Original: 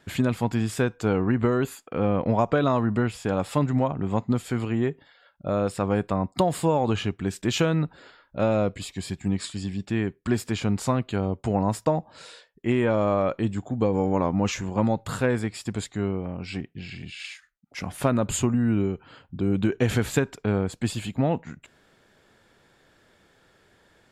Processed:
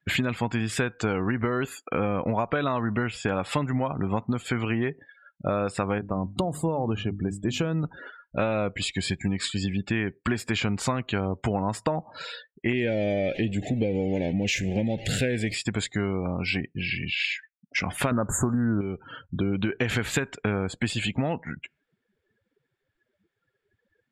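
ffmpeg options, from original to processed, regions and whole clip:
ffmpeg -i in.wav -filter_complex "[0:a]asettb=1/sr,asplit=3[link_01][link_02][link_03];[link_01]atrim=end=5.984[link_04];[link_02]atrim=start=5.98:end=7.84,asetpts=PTS-STARTPTS,afade=type=in:duration=0.004:curve=qsin,afade=type=out:start_time=1.856:duration=0.004:curve=qsin,equalizer=frequency=2500:width=0.3:gain=-12,bandreject=frequency=50:width_type=h:width=6,bandreject=frequency=100:width_type=h:width=6,bandreject=frequency=150:width_type=h:width=6,bandreject=frequency=200:width_type=h:width=6,bandreject=frequency=250:width_type=h:width=6,bandreject=frequency=300:width_type=h:width=6[link_05];[link_03]atrim=start=7.836[link_06];[link_04][link_05]acrossfade=duration=0.004:curve1=hsin:curve2=qsin[link_07];[link_07][link_06]acrossfade=duration=0.004:curve1=qsin:curve2=hsin,asettb=1/sr,asplit=3[link_08][link_09][link_10];[link_08]atrim=end=12.734[link_11];[link_09]atrim=start=12.73:end=15.55,asetpts=PTS-STARTPTS,afade=type=in:duration=0.004:curve=qsin,afade=type=out:start_time=2.816:duration=0.004:curve=qsin,aeval=exprs='val(0)+0.5*0.0224*sgn(val(0))':channel_layout=same,asuperstop=centerf=1100:order=4:qfactor=0.83[link_12];[link_10]atrim=start=15.546[link_13];[link_11][link_12]acrossfade=duration=0.004:curve1=hsin:curve2=qsin[link_14];[link_14][link_13]acrossfade=duration=0.004:curve1=qsin:curve2=hsin,asettb=1/sr,asplit=3[link_15][link_16][link_17];[link_15]atrim=end=18.114[link_18];[link_16]atrim=start=18.11:end=18.81,asetpts=PTS-STARTPTS,afade=type=in:duration=0.004:curve=qsin,afade=type=out:start_time=0.696:duration=0.004:curve=qsin,acontrast=88,asuperstop=centerf=3500:order=8:qfactor=0.6[link_19];[link_17]atrim=start=18.806[link_20];[link_18][link_19]acrossfade=duration=0.004:curve1=hsin:curve2=qsin[link_21];[link_21][link_20]acrossfade=duration=0.004:curve1=qsin:curve2=hsin,afftdn=noise_reduction=34:noise_floor=-47,equalizer=frequency=2200:width_type=o:width=1.9:gain=9.5,acompressor=threshold=-28dB:ratio=6,volume=5dB" out.wav

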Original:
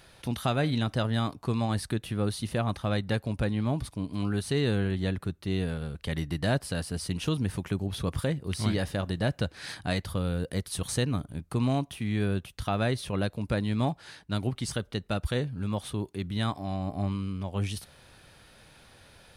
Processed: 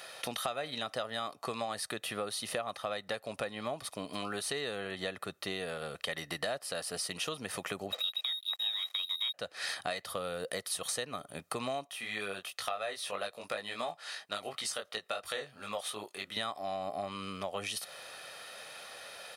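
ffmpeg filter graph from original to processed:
ffmpeg -i in.wav -filter_complex "[0:a]asettb=1/sr,asplit=3[link_01][link_02][link_03];[link_01]atrim=end=7.924[link_04];[link_02]atrim=start=7.92:end=9.34,asetpts=PTS-STARTPTS,afade=type=in:duration=0.004:curve=qsin,afade=type=out:start_time=1.416:duration=0.004:curve=qsin,lowpass=frequency=3300:width_type=q:width=0.5098,lowpass=frequency=3300:width_type=q:width=0.6013,lowpass=frequency=3300:width_type=q:width=0.9,lowpass=frequency=3300:width_type=q:width=2.563,afreqshift=-3900,aeval=exprs='sgn(val(0))*max(abs(val(0))-0.00501,0)':channel_layout=same[link_05];[link_03]atrim=start=9.336[link_06];[link_04][link_05]acrossfade=duration=0.004:curve1=hsin:curve2=qsin[link_07];[link_07][link_06]acrossfade=duration=0.004:curve1=qsin:curve2=hsin,asettb=1/sr,asplit=3[link_08][link_09][link_10];[link_08]atrim=end=11.874[link_11];[link_09]atrim=start=11.87:end=16.37,asetpts=PTS-STARTPTS,afade=type=in:duration=0.004:curve=qsin,afade=type=out:start_time=4.496:duration=0.004:curve=qsin,lowshelf=frequency=380:gain=-10,flanger=delay=18.5:depth=3.2:speed=2.9[link_12];[link_10]atrim=start=16.366[link_13];[link_11][link_12]acrossfade=duration=0.004:curve1=hsin:curve2=qsin[link_14];[link_14][link_13]acrossfade=duration=0.004:curve1=qsin:curve2=hsin,highpass=490,aecho=1:1:1.6:0.43,acompressor=threshold=-42dB:ratio=6,volume=8.5dB" out.wav

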